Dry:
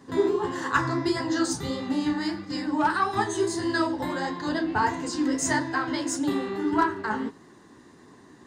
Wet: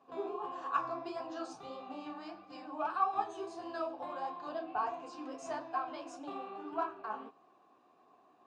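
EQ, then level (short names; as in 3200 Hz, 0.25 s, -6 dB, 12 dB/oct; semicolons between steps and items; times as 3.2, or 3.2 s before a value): dynamic EQ 5700 Hz, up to +4 dB, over -50 dBFS, Q 4.6; vowel filter a; +1.0 dB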